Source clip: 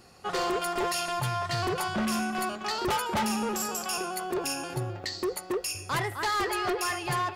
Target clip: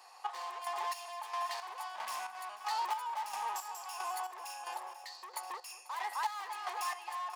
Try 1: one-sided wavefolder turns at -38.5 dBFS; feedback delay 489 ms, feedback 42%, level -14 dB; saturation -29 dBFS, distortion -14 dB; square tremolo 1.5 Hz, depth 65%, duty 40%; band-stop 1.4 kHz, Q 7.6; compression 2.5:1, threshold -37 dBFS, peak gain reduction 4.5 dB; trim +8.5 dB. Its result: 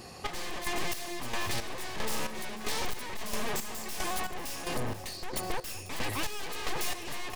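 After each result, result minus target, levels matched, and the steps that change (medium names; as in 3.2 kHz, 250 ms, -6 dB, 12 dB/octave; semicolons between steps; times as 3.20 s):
one-sided wavefolder: distortion +18 dB; 1 kHz band -7.0 dB
change: one-sided wavefolder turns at -28 dBFS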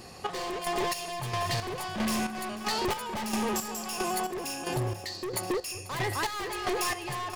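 1 kHz band -5.0 dB
add after compression: ladder high-pass 810 Hz, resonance 65%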